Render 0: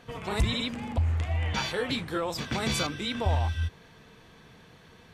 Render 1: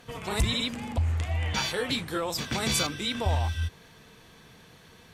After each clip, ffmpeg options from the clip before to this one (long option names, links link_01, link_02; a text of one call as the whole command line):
ffmpeg -i in.wav -af "aemphasis=mode=production:type=cd" out.wav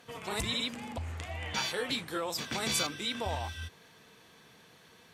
ffmpeg -i in.wav -af "highpass=frequency=230:poles=1,volume=-3.5dB" out.wav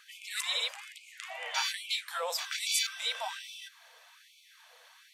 ffmpeg -i in.wav -af "afftfilt=real='re*gte(b*sr/1024,440*pow(2200/440,0.5+0.5*sin(2*PI*1.2*pts/sr)))':imag='im*gte(b*sr/1024,440*pow(2200/440,0.5+0.5*sin(2*PI*1.2*pts/sr)))':win_size=1024:overlap=0.75,volume=2dB" out.wav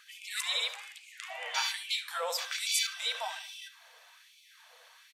ffmpeg -i in.wav -filter_complex "[0:a]asplit=2[link_01][link_02];[link_02]adelay=70,lowpass=frequency=4900:poles=1,volume=-12dB,asplit=2[link_03][link_04];[link_04]adelay=70,lowpass=frequency=4900:poles=1,volume=0.34,asplit=2[link_05][link_06];[link_06]adelay=70,lowpass=frequency=4900:poles=1,volume=0.34[link_07];[link_01][link_03][link_05][link_07]amix=inputs=4:normalize=0" out.wav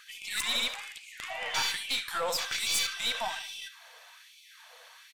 ffmpeg -i in.wav -af "aeval=exprs='(tanh(28.2*val(0)+0.35)-tanh(0.35))/28.2':channel_layout=same,volume=5.5dB" out.wav